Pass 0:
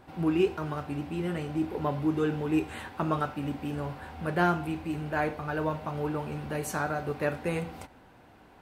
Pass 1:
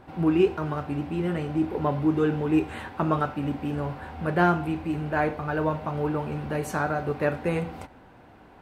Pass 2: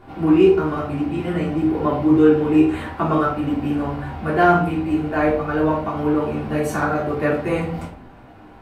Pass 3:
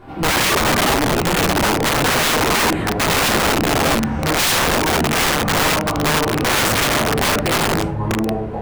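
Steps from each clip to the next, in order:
high-shelf EQ 3,600 Hz −8.5 dB; level +4.5 dB
rectangular room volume 300 cubic metres, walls furnished, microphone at 3.3 metres
delay with pitch and tempo change per echo 243 ms, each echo −6 semitones, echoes 3, each echo −6 dB; wrap-around overflow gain 15.5 dB; level +4 dB

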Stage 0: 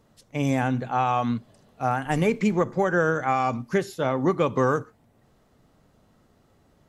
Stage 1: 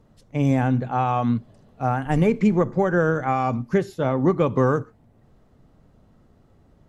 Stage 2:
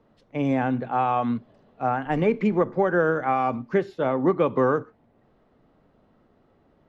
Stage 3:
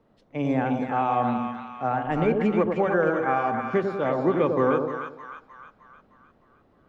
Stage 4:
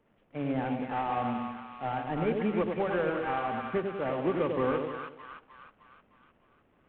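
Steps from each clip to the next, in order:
spectral tilt −2 dB per octave
three-way crossover with the lows and the highs turned down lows −12 dB, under 220 Hz, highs −21 dB, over 4,300 Hz
echo with a time of its own for lows and highs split 990 Hz, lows 97 ms, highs 307 ms, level −4 dB; level −2 dB
variable-slope delta modulation 16 kbit/s; level −6 dB

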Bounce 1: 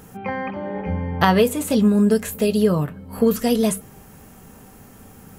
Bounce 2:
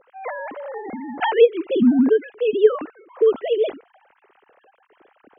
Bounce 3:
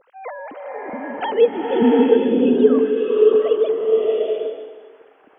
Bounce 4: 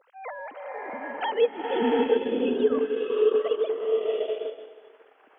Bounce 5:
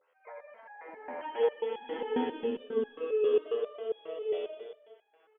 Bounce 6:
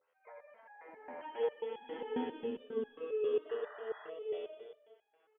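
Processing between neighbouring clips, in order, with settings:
three sine waves on the formant tracks
dynamic equaliser 1,800 Hz, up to −6 dB, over −36 dBFS, Q 1; slow-attack reverb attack 720 ms, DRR −2 dB; level −1 dB
high-pass filter 760 Hz 6 dB per octave; transient designer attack −2 dB, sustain −6 dB; level −1 dB
loudspeakers that aren't time-aligned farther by 39 metres −5 dB, 68 metres −3 dB, 99 metres −6 dB; step-sequenced resonator 7.4 Hz 84–830 Hz
sound drawn into the spectrogram noise, 0:03.49–0:04.10, 600–2,000 Hz −46 dBFS; parametric band 120 Hz +5.5 dB 1.3 octaves; level −7 dB

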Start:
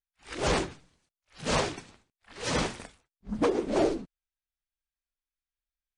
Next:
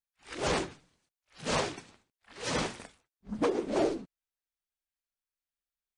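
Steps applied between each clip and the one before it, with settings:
low-shelf EQ 73 Hz −9 dB
level −2.5 dB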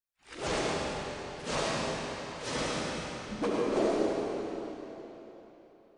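convolution reverb RT60 3.7 s, pre-delay 30 ms, DRR −4.5 dB
level −4 dB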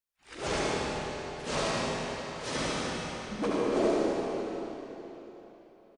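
single-tap delay 76 ms −5.5 dB

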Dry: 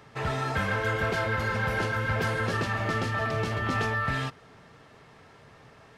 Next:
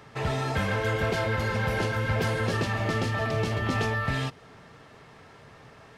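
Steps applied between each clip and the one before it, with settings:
dynamic equaliser 1,400 Hz, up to −6 dB, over −45 dBFS, Q 1.6
level +2.5 dB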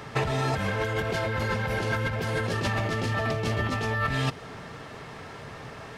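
compressor whose output falls as the input rises −32 dBFS, ratio −1
level +4.5 dB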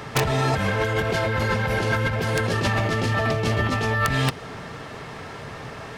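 wrap-around overflow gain 15.5 dB
level +5 dB

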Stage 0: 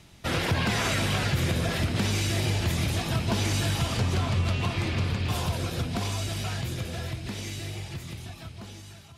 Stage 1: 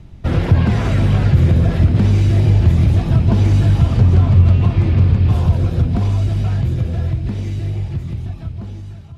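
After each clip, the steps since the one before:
spectral tilt −4 dB per octave
level +2.5 dB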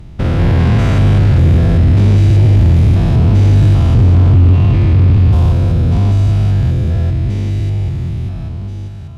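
spectrum averaged block by block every 200 ms
sine wavefolder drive 3 dB, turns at −4 dBFS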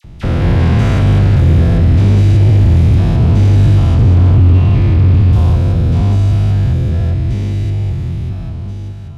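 all-pass dispersion lows, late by 43 ms, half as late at 1,500 Hz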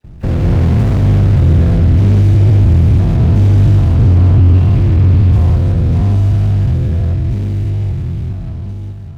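running median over 41 samples

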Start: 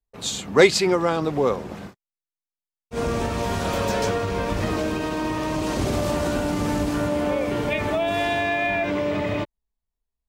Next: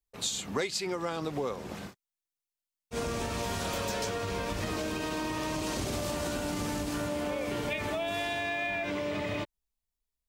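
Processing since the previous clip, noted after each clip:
high-shelf EQ 2,300 Hz +8.5 dB
downward compressor 6 to 1, threshold −24 dBFS, peak gain reduction 15.5 dB
level −5.5 dB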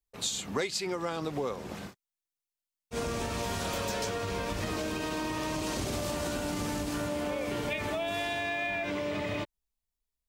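no processing that can be heard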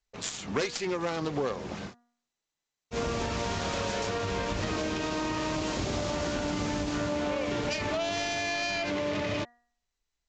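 phase distortion by the signal itself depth 0.24 ms
hum removal 239.3 Hz, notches 8
level +3 dB
SBC 192 kbit/s 16,000 Hz

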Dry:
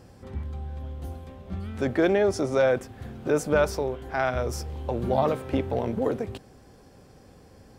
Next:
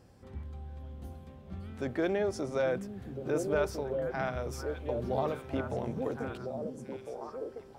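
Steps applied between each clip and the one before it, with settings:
echo through a band-pass that steps 677 ms, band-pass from 170 Hz, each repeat 1.4 octaves, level −0.5 dB
level −8.5 dB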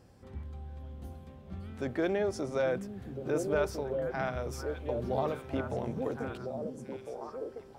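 no processing that can be heard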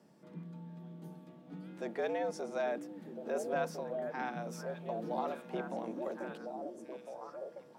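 frequency shifter +97 Hz
level −5 dB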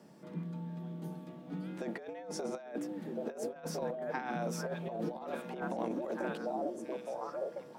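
compressor whose output falls as the input rises −40 dBFS, ratio −0.5
level +3.5 dB

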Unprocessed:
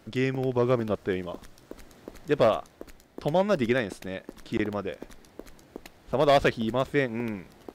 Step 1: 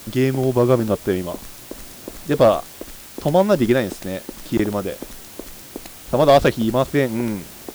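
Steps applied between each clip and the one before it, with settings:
parametric band 2,100 Hz −6.5 dB 1.5 octaves
notch filter 450 Hz, Q 12
in parallel at −11.5 dB: bit-depth reduction 6 bits, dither triangular
on the sum: level +7 dB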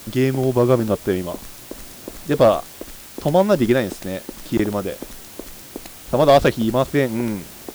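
no processing that can be heard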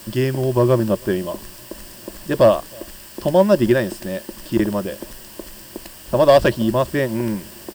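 EQ curve with evenly spaced ripples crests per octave 1.3, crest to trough 8 dB
slap from a distant wall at 54 metres, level −29 dB
level −1 dB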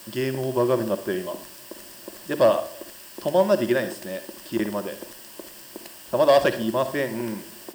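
high-pass filter 340 Hz 6 dB per octave
on a send at −10 dB: convolution reverb RT60 0.40 s, pre-delay 47 ms
on the sum: level −3.5 dB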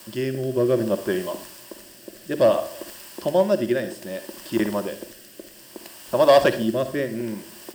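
rotating-speaker cabinet horn 0.6 Hz
level +3 dB

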